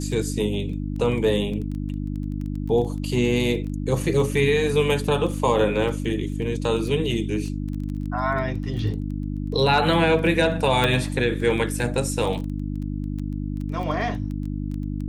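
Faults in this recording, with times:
crackle 13/s -30 dBFS
hum 50 Hz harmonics 6 -28 dBFS
10.84 pop -8 dBFS

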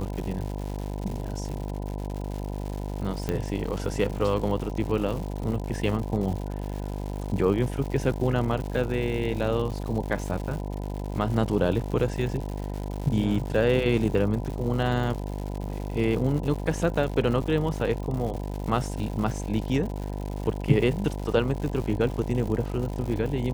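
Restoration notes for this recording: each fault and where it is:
buzz 50 Hz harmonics 20 -32 dBFS
crackle 200/s -33 dBFS
3.29 pop -14 dBFS

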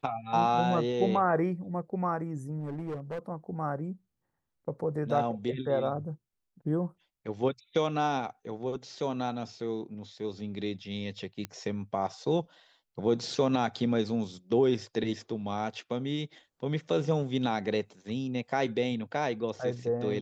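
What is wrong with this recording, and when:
2.6–3.19 clipped -32 dBFS
11.45 pop -20 dBFS

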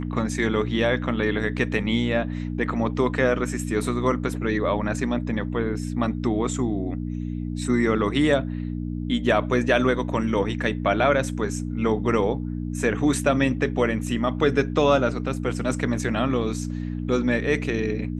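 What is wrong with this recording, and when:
hum 60 Hz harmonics 5 -29 dBFS

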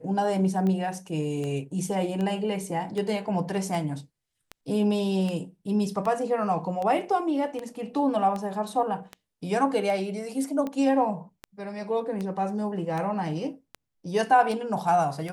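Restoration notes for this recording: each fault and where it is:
tick 78 rpm -20 dBFS

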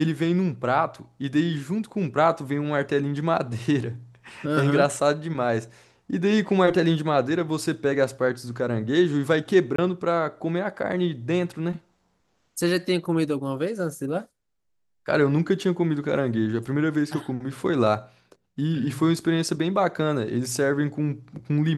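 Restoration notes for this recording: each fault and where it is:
9.76–9.78 gap 24 ms

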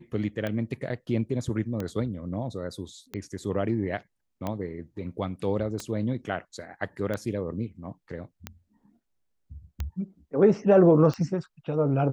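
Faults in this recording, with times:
tick 45 rpm -18 dBFS
5.8 pop

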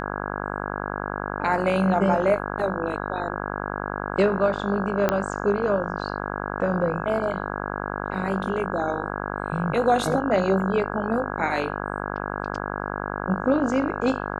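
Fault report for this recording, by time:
buzz 50 Hz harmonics 33 -30 dBFS
5.09 pop -7 dBFS

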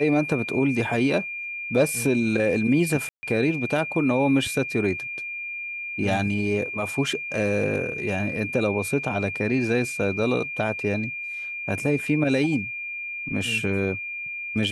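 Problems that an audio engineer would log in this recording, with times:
tone 2400 Hz -30 dBFS
3.09–3.23 gap 0.14 s

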